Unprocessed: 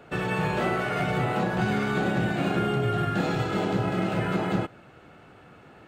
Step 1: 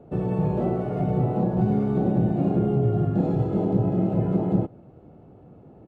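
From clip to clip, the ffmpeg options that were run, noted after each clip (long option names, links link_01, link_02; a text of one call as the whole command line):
ffmpeg -i in.wav -af "firequalizer=gain_entry='entry(180,0);entry(730,-7);entry(1500,-26)':delay=0.05:min_phase=1,volume=5.5dB" out.wav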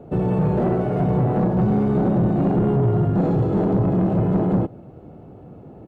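ffmpeg -i in.wav -af "asoftclip=type=tanh:threshold=-20.5dB,volume=7dB" out.wav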